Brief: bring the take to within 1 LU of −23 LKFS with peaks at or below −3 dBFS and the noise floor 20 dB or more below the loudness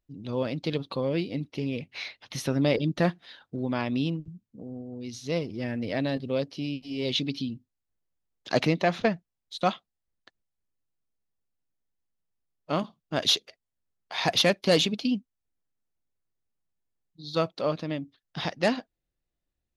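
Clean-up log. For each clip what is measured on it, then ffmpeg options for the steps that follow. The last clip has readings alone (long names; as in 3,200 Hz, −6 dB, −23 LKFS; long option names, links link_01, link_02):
integrated loudness −28.5 LKFS; sample peak −9.5 dBFS; target loudness −23.0 LKFS
→ -af "volume=5.5dB"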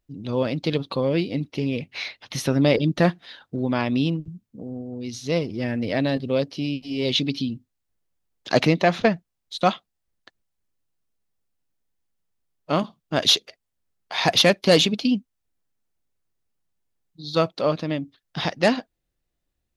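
integrated loudness −23.0 LKFS; sample peak −4.0 dBFS; background noise floor −79 dBFS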